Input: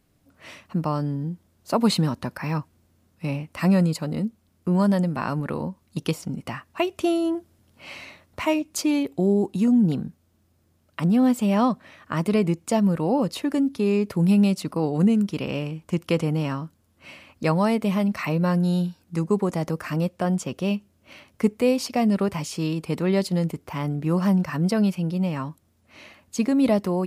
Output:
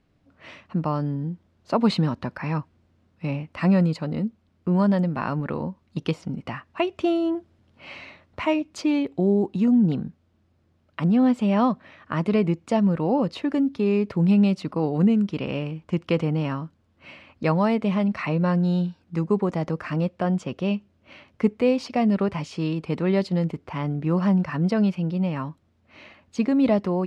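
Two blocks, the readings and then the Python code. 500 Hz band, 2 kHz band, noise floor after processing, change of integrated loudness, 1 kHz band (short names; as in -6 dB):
0.0 dB, -0.5 dB, -65 dBFS, 0.0 dB, 0.0 dB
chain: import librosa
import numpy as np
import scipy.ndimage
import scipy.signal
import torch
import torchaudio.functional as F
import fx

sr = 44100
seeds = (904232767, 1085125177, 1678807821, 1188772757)

y = scipy.signal.sosfilt(scipy.signal.butter(2, 3700.0, 'lowpass', fs=sr, output='sos'), x)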